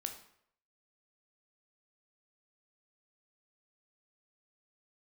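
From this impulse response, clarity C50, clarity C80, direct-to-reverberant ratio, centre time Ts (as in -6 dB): 9.0 dB, 12.5 dB, 5.0 dB, 15 ms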